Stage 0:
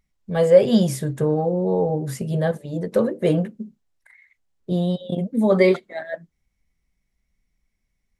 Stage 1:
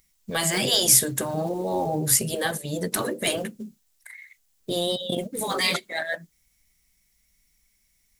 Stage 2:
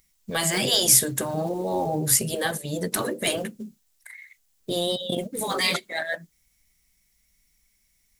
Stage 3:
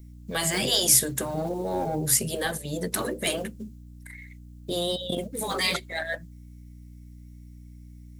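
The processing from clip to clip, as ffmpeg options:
ffmpeg -i in.wav -af "crystalizer=i=7.5:c=0,acrusher=bits=9:mode=log:mix=0:aa=0.000001,afftfilt=real='re*lt(hypot(re,im),0.562)':imag='im*lt(hypot(re,im),0.562)':win_size=1024:overlap=0.75" out.wav
ffmpeg -i in.wav -af anull out.wav
ffmpeg -i in.wav -filter_complex "[0:a]aeval=exprs='val(0)+0.00794*(sin(2*PI*60*n/s)+sin(2*PI*2*60*n/s)/2+sin(2*PI*3*60*n/s)/3+sin(2*PI*4*60*n/s)/4+sin(2*PI*5*60*n/s)/5)':channel_layout=same,acrossover=split=690|1000[link_01][link_02][link_03];[link_02]aeval=exprs='clip(val(0),-1,0.0133)':channel_layout=same[link_04];[link_01][link_04][link_03]amix=inputs=3:normalize=0,volume=-2dB" out.wav

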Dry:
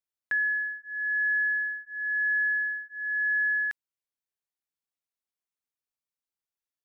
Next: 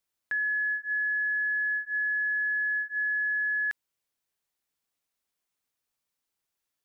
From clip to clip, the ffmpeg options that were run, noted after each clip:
ffmpeg -i in.wav -af "alimiter=level_in=9.5dB:limit=-24dB:level=0:latency=1,volume=-9.5dB,volume=8.5dB" out.wav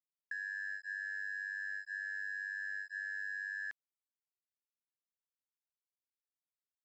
ffmpeg -i in.wav -af "acompressor=threshold=-31dB:ratio=10,aresample=16000,aeval=exprs='sgn(val(0))*max(abs(val(0))-0.00266,0)':channel_layout=same,aresample=44100,tremolo=f=98:d=0.889,volume=-3.5dB" out.wav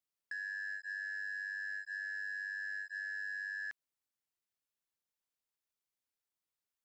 ffmpeg -i in.wav -af "asoftclip=type=tanh:threshold=-37.5dB,volume=2.5dB" out.wav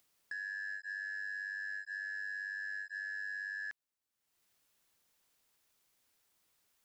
ffmpeg -i in.wav -af "acompressor=mode=upward:threshold=-60dB:ratio=2.5" out.wav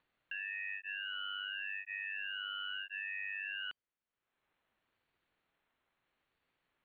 ffmpeg -i in.wav -af "crystalizer=i=7.5:c=0,lowpass=frequency=3300:width_type=q:width=0.5098,lowpass=frequency=3300:width_type=q:width=0.6013,lowpass=frequency=3300:width_type=q:width=0.9,lowpass=frequency=3300:width_type=q:width=2.563,afreqshift=-3900,aeval=exprs='val(0)*sin(2*PI*560*n/s+560*0.4/0.78*sin(2*PI*0.78*n/s))':channel_layout=same,volume=-4dB" out.wav

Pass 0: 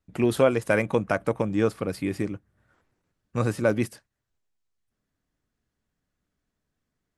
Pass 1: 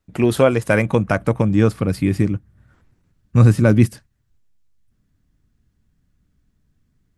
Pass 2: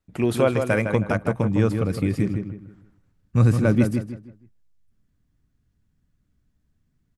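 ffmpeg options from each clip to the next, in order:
ffmpeg -i in.wav -af "asubboost=boost=5:cutoff=240,volume=6dB" out.wav
ffmpeg -i in.wav -filter_complex "[0:a]asplit=2[link_01][link_02];[link_02]adelay=158,lowpass=frequency=2600:poles=1,volume=-6dB,asplit=2[link_03][link_04];[link_04]adelay=158,lowpass=frequency=2600:poles=1,volume=0.32,asplit=2[link_05][link_06];[link_06]adelay=158,lowpass=frequency=2600:poles=1,volume=0.32,asplit=2[link_07][link_08];[link_08]adelay=158,lowpass=frequency=2600:poles=1,volume=0.32[link_09];[link_01][link_03][link_05][link_07][link_09]amix=inputs=5:normalize=0,volume=-5.5dB" out.wav

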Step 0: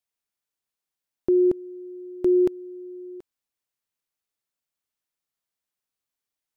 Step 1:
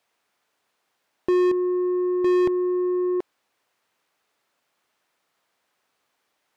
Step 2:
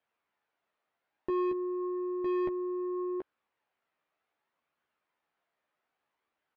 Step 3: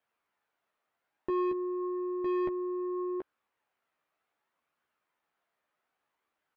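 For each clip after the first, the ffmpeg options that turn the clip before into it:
ffmpeg -i in.wav -filter_complex "[0:a]asplit=2[link_01][link_02];[link_02]highpass=frequency=720:poles=1,volume=33dB,asoftclip=type=tanh:threshold=-14.5dB[link_03];[link_01][link_03]amix=inputs=2:normalize=0,lowpass=frequency=1000:poles=1,volume=-6dB" out.wav
ffmpeg -i in.wav -filter_complex "[0:a]lowpass=2600,flanger=delay=0.6:depth=1.1:regen=74:speed=0.62:shape=triangular,asplit=2[link_01][link_02];[link_02]adelay=13,volume=-6dB[link_03];[link_01][link_03]amix=inputs=2:normalize=0,volume=-5dB" out.wav
ffmpeg -i in.wav -af "equalizer=frequency=1300:width_type=o:width=0.77:gain=2" out.wav

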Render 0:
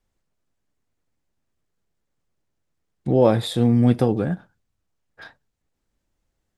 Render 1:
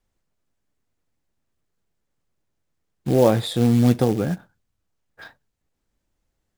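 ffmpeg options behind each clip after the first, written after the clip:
ffmpeg -i in.wav -af "acrusher=bits=5:mode=log:mix=0:aa=0.000001" out.wav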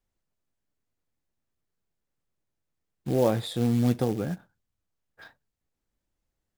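ffmpeg -i in.wav -af "equalizer=frequency=15000:width_type=o:width=0.31:gain=2,volume=-7dB" out.wav

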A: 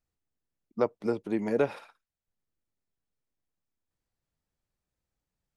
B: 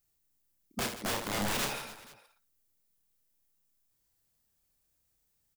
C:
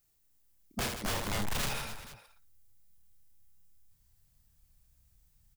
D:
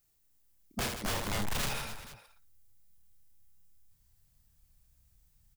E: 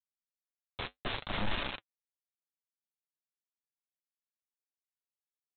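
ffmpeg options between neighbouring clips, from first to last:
ffmpeg -i in.wav -af "aemphasis=mode=production:type=75kf,aeval=exprs='(mod(26.6*val(0)+1,2)-1)/26.6':channel_layout=same,aecho=1:1:30|78|154.8|277.7|474.3:0.631|0.398|0.251|0.158|0.1" out.wav
ffmpeg -i in.wav -af "asubboost=boost=8:cutoff=130,asoftclip=type=tanh:threshold=-32dB,volume=3.5dB" out.wav
ffmpeg -i in.wav -af anull out.wav
ffmpeg -i in.wav -af "aresample=8000,acrusher=bits=4:mix=0:aa=0.000001,aresample=44100,flanger=delay=3.2:depth=7.3:regen=-55:speed=0.63:shape=sinusoidal" out.wav

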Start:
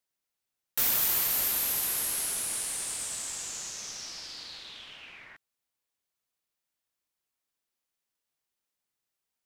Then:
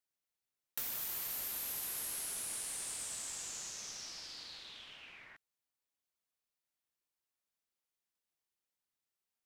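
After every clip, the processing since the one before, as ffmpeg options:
ffmpeg -i in.wav -af "acompressor=threshold=-31dB:ratio=6,volume=-6dB" out.wav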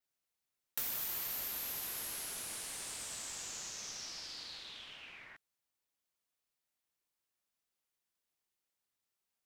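ffmpeg -i in.wav -af "adynamicequalizer=threshold=0.00178:dfrequency=9400:dqfactor=1.6:tfrequency=9400:tqfactor=1.6:attack=5:release=100:ratio=0.375:range=3.5:mode=cutabove:tftype=bell,volume=2dB" out.wav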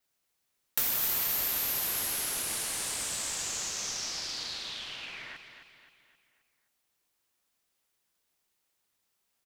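ffmpeg -i in.wav -af "aecho=1:1:263|526|789|1052|1315:0.355|0.163|0.0751|0.0345|0.0159,volume=9dB" out.wav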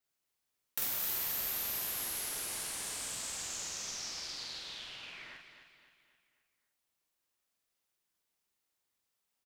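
ffmpeg -i in.wav -filter_complex "[0:a]asplit=2[link_01][link_02];[link_02]adelay=47,volume=-3dB[link_03];[link_01][link_03]amix=inputs=2:normalize=0,volume=-7.5dB" out.wav

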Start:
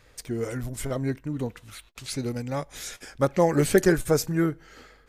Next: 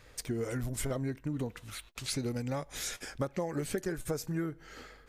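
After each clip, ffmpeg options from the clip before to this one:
ffmpeg -i in.wav -af "acompressor=threshold=-30dB:ratio=16" out.wav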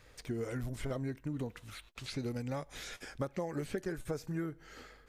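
ffmpeg -i in.wav -filter_complex "[0:a]acrossover=split=4500[link_01][link_02];[link_02]acompressor=threshold=-51dB:ratio=4:attack=1:release=60[link_03];[link_01][link_03]amix=inputs=2:normalize=0,volume=-3dB" out.wav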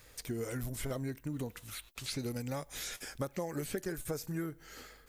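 ffmpeg -i in.wav -af "aemphasis=mode=production:type=50fm" out.wav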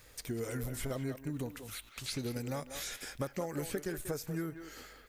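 ffmpeg -i in.wav -filter_complex "[0:a]asplit=2[link_01][link_02];[link_02]adelay=190,highpass=300,lowpass=3400,asoftclip=type=hard:threshold=-32.5dB,volume=-8dB[link_03];[link_01][link_03]amix=inputs=2:normalize=0" out.wav

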